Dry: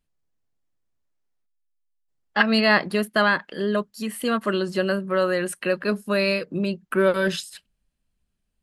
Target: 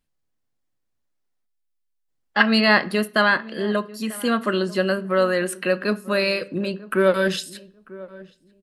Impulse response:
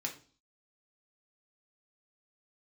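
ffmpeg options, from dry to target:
-filter_complex "[0:a]asplit=2[link_01][link_02];[link_02]adelay=943,lowpass=frequency=990:poles=1,volume=-18.5dB,asplit=2[link_03][link_04];[link_04]adelay=943,lowpass=frequency=990:poles=1,volume=0.22[link_05];[link_01][link_03][link_05]amix=inputs=3:normalize=0,asplit=2[link_06][link_07];[1:a]atrim=start_sample=2205,asetrate=36162,aresample=44100[link_08];[link_07][link_08]afir=irnorm=-1:irlink=0,volume=-11.5dB[link_09];[link_06][link_09]amix=inputs=2:normalize=0"

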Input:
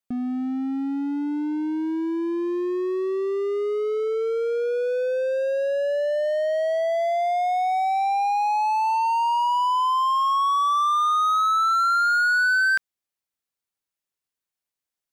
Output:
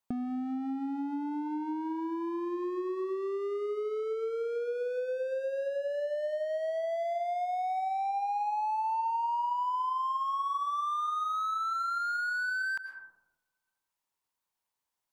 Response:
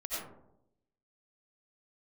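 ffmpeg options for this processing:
-filter_complex "[0:a]equalizer=frequency=940:width=3:gain=12.5,asplit=2[link_01][link_02];[1:a]atrim=start_sample=2205,asetrate=37485,aresample=44100[link_03];[link_02][link_03]afir=irnorm=-1:irlink=0,volume=-15.5dB[link_04];[link_01][link_04]amix=inputs=2:normalize=0,acompressor=threshold=-31dB:ratio=6,volume=-1dB"

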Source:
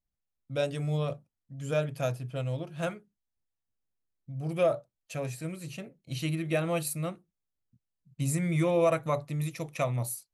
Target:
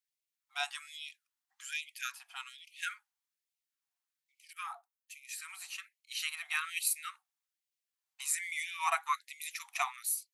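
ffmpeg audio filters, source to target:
ffmpeg -i in.wav -filter_complex "[0:a]asettb=1/sr,asplit=3[link_01][link_02][link_03];[link_01]atrim=end=4.534[link_04];[link_02]atrim=start=4.53:end=5.29,asetpts=PTS-STARTPTS,afade=type=in:duration=0.004:curve=qsin,afade=type=out:start_time=0.756:duration=0.004:curve=qsin,equalizer=frequency=4100:width_type=o:width=2.8:gain=-11.5[link_05];[link_03]atrim=start=5.286[link_06];[link_04][link_05]acrossfade=duration=0.004:curve1=hsin:curve2=qsin[link_07];[link_07][link_06]acrossfade=duration=0.004:curve1=qsin:curve2=hsin,asettb=1/sr,asplit=3[link_08][link_09][link_10];[link_08]atrim=end=8.264[link_11];[link_09]atrim=start=8.26:end=8.88,asetpts=PTS-STARTPTS,afade=type=in:duration=0.004:curve=qsin,afade=type=out:start_time=0.616:duration=0.004:curve=qsin,afreqshift=-50[link_12];[link_10]atrim=start=8.876[link_13];[link_11][link_12]acrossfade=duration=0.004:curve1=hsin:curve2=qsin[link_14];[link_14][link_13]acrossfade=duration=0.004:curve1=qsin:curve2=hsin,afftfilt=real='re*gte(b*sr/1024,680*pow(2000/680,0.5+0.5*sin(2*PI*1.2*pts/sr)))':imag='im*gte(b*sr/1024,680*pow(2000/680,0.5+0.5*sin(2*PI*1.2*pts/sr)))':win_size=1024:overlap=0.75,volume=3.5dB" out.wav

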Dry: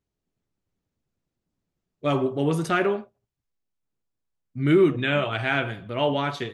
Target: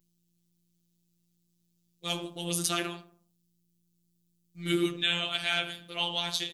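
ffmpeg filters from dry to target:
ffmpeg -i in.wav -filter_complex "[0:a]aeval=exprs='val(0)+0.00126*(sin(2*PI*60*n/s)+sin(2*PI*2*60*n/s)/2+sin(2*PI*3*60*n/s)/3+sin(2*PI*4*60*n/s)/4+sin(2*PI*5*60*n/s)/5)':channel_layout=same,asplit=2[link_01][link_02];[link_02]adelay=78,lowpass=frequency=1400:poles=1,volume=-15dB,asplit=2[link_03][link_04];[link_04]adelay=78,lowpass=frequency=1400:poles=1,volume=0.48,asplit=2[link_05][link_06];[link_06]adelay=78,lowpass=frequency=1400:poles=1,volume=0.48,asplit=2[link_07][link_08];[link_08]adelay=78,lowpass=frequency=1400:poles=1,volume=0.48[link_09];[link_03][link_05][link_07][link_09]amix=inputs=4:normalize=0[link_10];[link_01][link_10]amix=inputs=2:normalize=0,afftfilt=real='hypot(re,im)*cos(PI*b)':imag='0':win_size=1024:overlap=0.75,crystalizer=i=6.5:c=0,highshelf=frequency=2500:width_type=q:width=1.5:gain=6.5,volume=-9dB" out.wav

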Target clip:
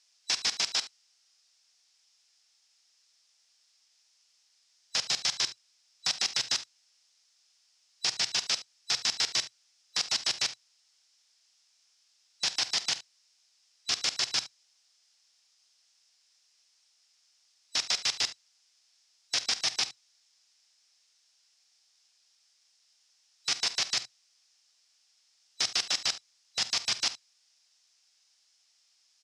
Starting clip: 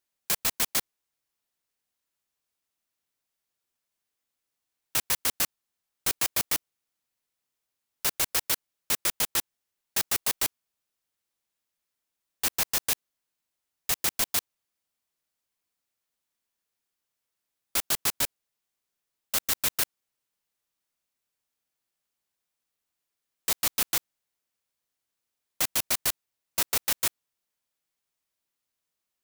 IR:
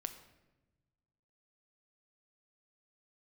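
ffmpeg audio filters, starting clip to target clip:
-af "afftfilt=real='real(if(lt(b,736),b+184*(1-2*mod(floor(b/184),2)),b),0)':imag='imag(if(lt(b,736),b+184*(1-2*mod(floor(b/184),2)),b),0)':win_size=2048:overlap=0.75,aeval=exprs='0.299*sin(PI/2*8.91*val(0)/0.299)':channel_layout=same,aderivative,asoftclip=type=tanh:threshold=-5.5dB,afftfilt=real='re*lt(hypot(re,im),0.112)':imag='im*lt(hypot(re,im),0.112)':win_size=1024:overlap=0.75,highpass=100,equalizer=frequency=120:width_type=q:width=4:gain=6,equalizer=frequency=750:width_type=q:width=4:gain=5,equalizer=frequency=5200:width_type=q:width=4:gain=8,lowpass=frequency=6300:width=0.5412,lowpass=frequency=6300:width=1.3066,aecho=1:1:48|73:0.15|0.141"

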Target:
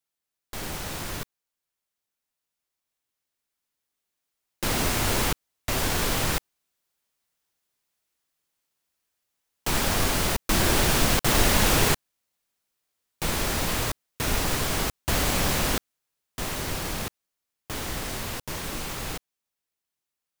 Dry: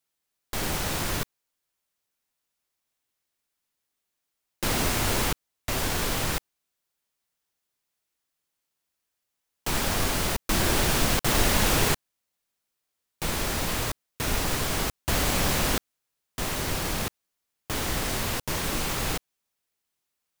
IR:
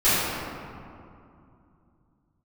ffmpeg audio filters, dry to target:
-af "dynaudnorm=framelen=760:gausssize=13:maxgain=11.5dB,volume=-5dB"

